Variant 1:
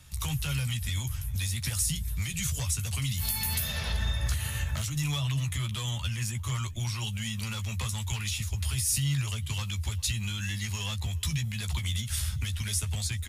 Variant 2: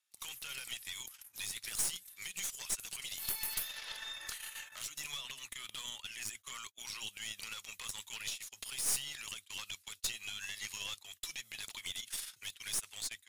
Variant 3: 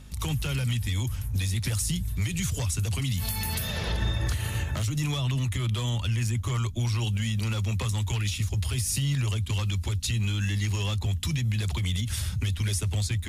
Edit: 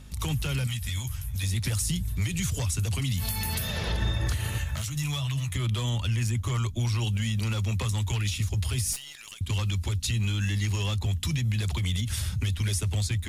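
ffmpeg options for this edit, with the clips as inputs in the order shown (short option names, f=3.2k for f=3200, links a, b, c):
-filter_complex "[0:a]asplit=2[a][b];[2:a]asplit=4[c][d][e][f];[c]atrim=end=0.672[g];[a]atrim=start=0.668:end=1.432[h];[d]atrim=start=1.428:end=4.582[i];[b]atrim=start=4.578:end=5.542[j];[e]atrim=start=5.538:end=8.932[k];[1:a]atrim=start=8.928:end=9.412[l];[f]atrim=start=9.408[m];[g][h]acrossfade=d=0.004:c1=hsin:c2=hsin[n];[n][i]acrossfade=d=0.004:c1=hsin:c2=hsin[o];[o][j]acrossfade=d=0.004:c1=hsin:c2=hsin[p];[p][k]acrossfade=d=0.004:c1=hsin:c2=hsin[q];[q][l]acrossfade=d=0.004:c1=hsin:c2=hsin[r];[r][m]acrossfade=d=0.004:c1=hsin:c2=hsin"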